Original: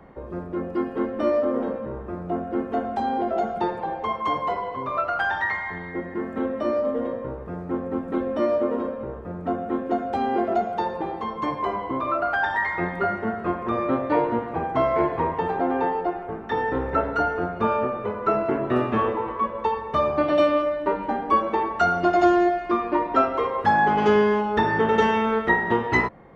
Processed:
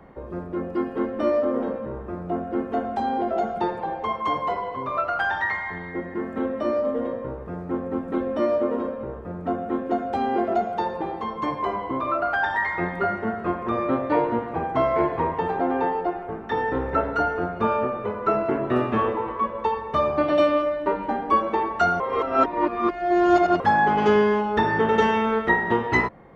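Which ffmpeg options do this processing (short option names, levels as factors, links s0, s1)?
-filter_complex "[0:a]asplit=3[s0][s1][s2];[s0]atrim=end=22.002[s3];[s1]atrim=start=21.998:end=23.602,asetpts=PTS-STARTPTS,areverse[s4];[s2]atrim=start=23.598[s5];[s3][s4]acrossfade=d=0.004:c1=hsin:c2=hsin[s6];[s6][s5]acrossfade=d=0.004:c1=hsin:c2=hsin"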